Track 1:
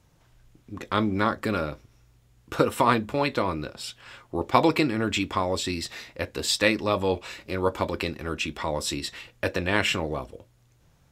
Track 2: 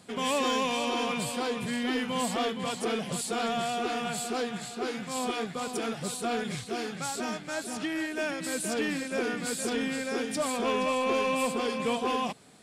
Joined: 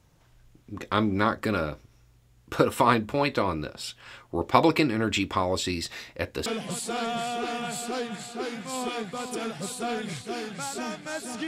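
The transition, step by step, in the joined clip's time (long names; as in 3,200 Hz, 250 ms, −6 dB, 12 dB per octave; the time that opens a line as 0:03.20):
track 1
0:06.46: continue with track 2 from 0:02.88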